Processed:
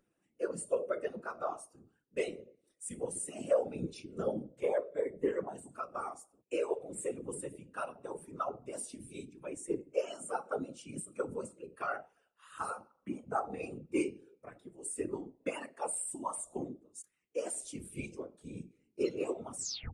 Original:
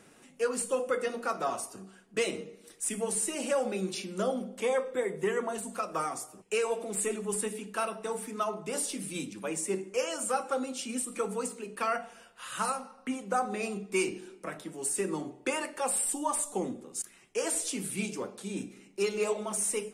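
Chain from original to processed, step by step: tape stop on the ending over 0.37 s; whisper effect; spectral contrast expander 1.5:1; trim -3 dB

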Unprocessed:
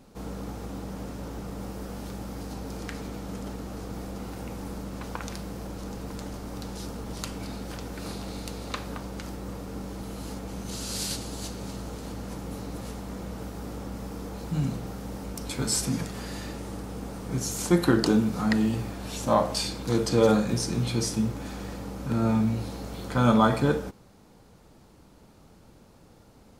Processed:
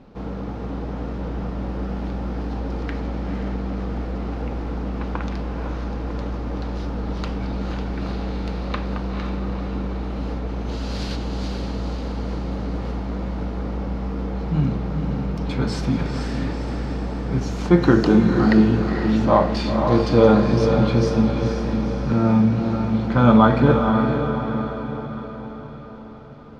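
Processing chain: distance through air 260 m; echo that smears into a reverb 487 ms, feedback 54%, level -5 dB; trim +7 dB

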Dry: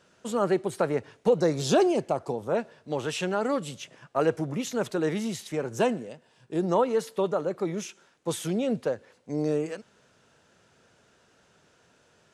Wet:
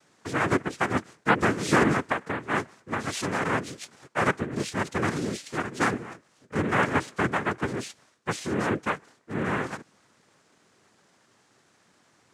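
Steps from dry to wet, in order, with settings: noise-vocoded speech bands 3; 6.55–7.66 s: three bands compressed up and down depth 40%

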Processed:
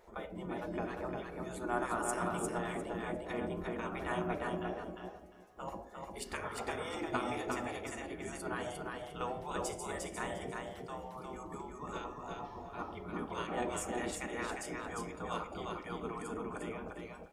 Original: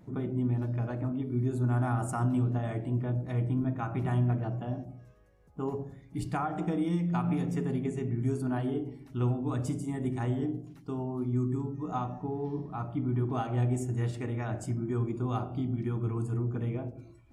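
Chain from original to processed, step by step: spectral gate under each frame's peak -15 dB weak; feedback delay 352 ms, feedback 19%, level -3.5 dB; trim +4 dB

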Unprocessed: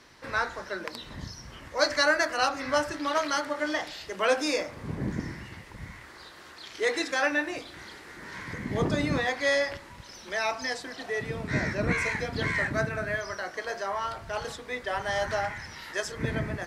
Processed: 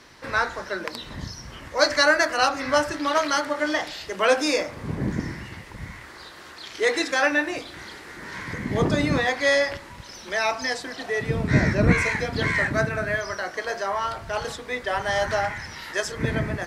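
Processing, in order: 11.28–12.02 s: bass shelf 330 Hz +7 dB; trim +5 dB

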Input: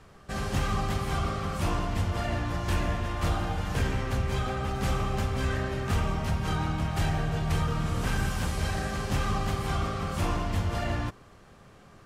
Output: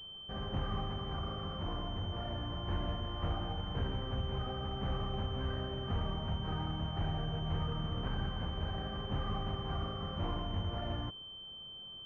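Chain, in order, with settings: 0.88–2.61 s: hard clipper -26 dBFS, distortion -20 dB; class-D stage that switches slowly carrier 3.1 kHz; trim -8 dB

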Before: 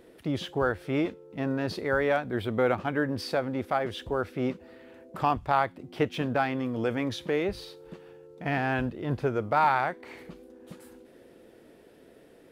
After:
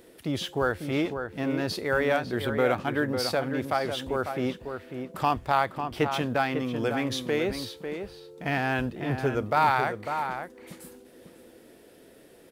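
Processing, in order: treble shelf 3.9 kHz +10.5 dB; echo from a far wall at 94 m, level -7 dB

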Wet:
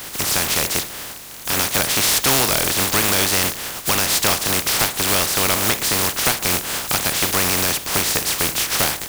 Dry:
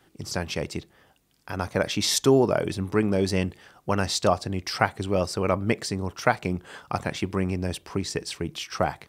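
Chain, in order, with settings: spectral contrast reduction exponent 0.2; compression 2:1, threshold -29 dBFS, peak gain reduction 9 dB; power-law waveshaper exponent 0.5; trim +2.5 dB

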